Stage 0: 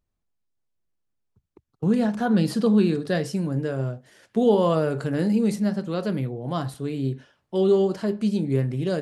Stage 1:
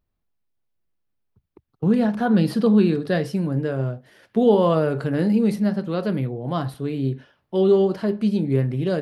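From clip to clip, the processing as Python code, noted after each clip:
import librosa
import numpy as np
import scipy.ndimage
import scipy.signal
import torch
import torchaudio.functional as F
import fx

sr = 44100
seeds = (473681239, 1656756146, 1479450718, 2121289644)

y = fx.peak_eq(x, sr, hz=7300.0, db=-12.0, octaves=0.8)
y = F.gain(torch.from_numpy(y), 2.5).numpy()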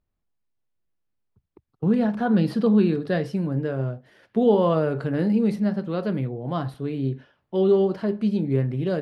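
y = fx.lowpass(x, sr, hz=4000.0, slope=6)
y = F.gain(torch.from_numpy(y), -2.0).numpy()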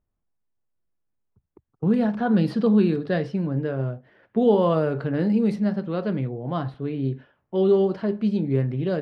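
y = fx.env_lowpass(x, sr, base_hz=1700.0, full_db=-15.0)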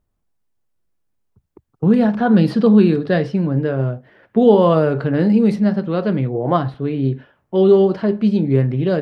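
y = fx.spec_box(x, sr, start_s=6.34, length_s=0.22, low_hz=280.0, high_hz=2300.0, gain_db=7)
y = F.gain(torch.from_numpy(y), 7.0).numpy()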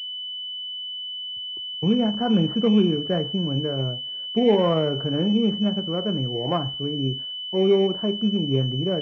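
y = fx.pwm(x, sr, carrier_hz=3000.0)
y = F.gain(torch.from_numpy(y), -7.0).numpy()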